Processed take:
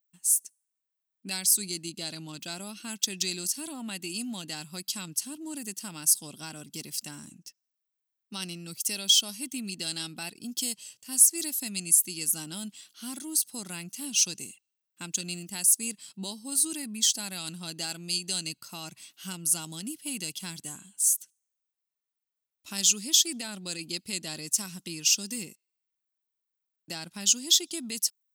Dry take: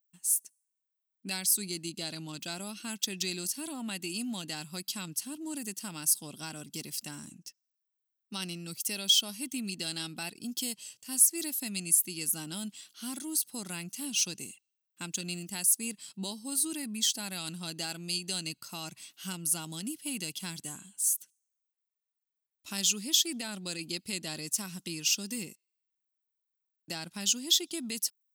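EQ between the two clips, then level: dynamic bell 6.9 kHz, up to +6 dB, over -41 dBFS, Q 0.78; 0.0 dB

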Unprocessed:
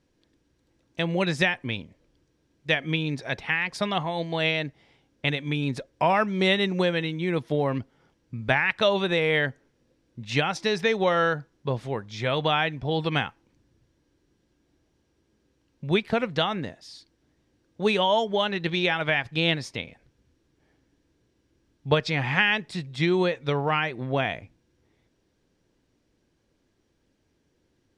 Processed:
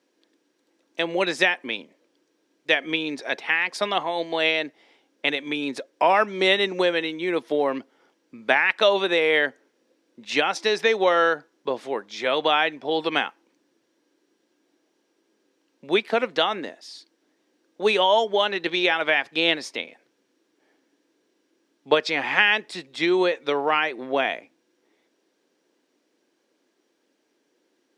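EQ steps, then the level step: high-pass 280 Hz 24 dB/octave; +3.5 dB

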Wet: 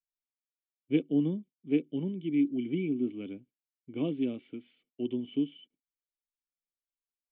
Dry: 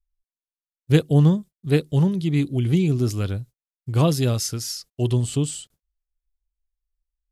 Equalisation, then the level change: cascade formant filter i; three-band isolator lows -19 dB, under 370 Hz, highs -17 dB, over 2.7 kHz; resonant low shelf 130 Hz -10 dB, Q 1.5; +7.5 dB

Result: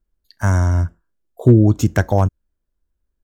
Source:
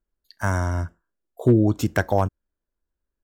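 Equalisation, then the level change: bass shelf 220 Hz +9.5 dB; dynamic bell 6.5 kHz, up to +8 dB, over -58 dBFS, Q 4.6; +1.0 dB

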